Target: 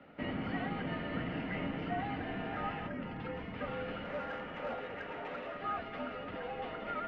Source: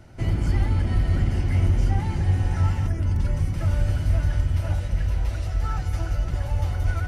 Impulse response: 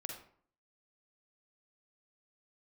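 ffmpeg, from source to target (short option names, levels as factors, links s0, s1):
-filter_complex "[0:a]highpass=f=250:t=q:w=0.5412,highpass=f=250:t=q:w=1.307,lowpass=f=3300:t=q:w=0.5176,lowpass=f=3300:t=q:w=0.7071,lowpass=f=3300:t=q:w=1.932,afreqshift=-75,asettb=1/sr,asplit=3[s0][s1][s2];[s0]atrim=end=4.044[s3];[s1]atrim=start=4.04:end=5.57,asetpts=PTS-STARTPTS,afade=t=in:d=0.004:c=qsin,afade=t=out:st=1.526:d=0.004:c=qsin,asplit=2[s4][s5];[s5]highpass=f=720:p=1,volume=4.47,asoftclip=type=tanh:threshold=0.0447[s6];[s4][s6]amix=inputs=2:normalize=0,lowpass=f=1200:p=1,volume=0.501[s7];[s2]atrim=start=5.566[s8];[s3][s7]acrossfade=d=0.004:c1=hsin:c2=qsin[s9];[s9][s8]acrossfade=d=0.004:c1=qsin:c2=hsin,volume=0.841"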